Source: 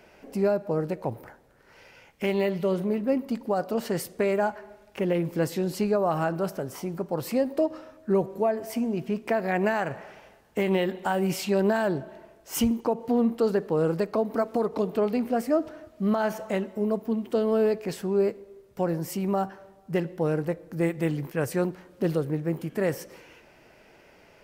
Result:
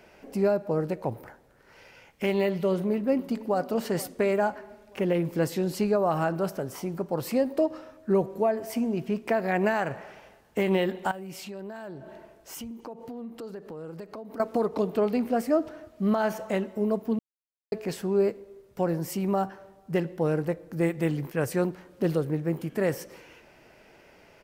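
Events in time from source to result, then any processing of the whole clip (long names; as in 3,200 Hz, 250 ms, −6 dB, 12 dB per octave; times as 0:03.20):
0:02.71–0:03.60: delay throw 470 ms, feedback 50%, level −17.5 dB
0:11.11–0:14.40: downward compressor 4 to 1, threshold −39 dBFS
0:17.19–0:17.72: silence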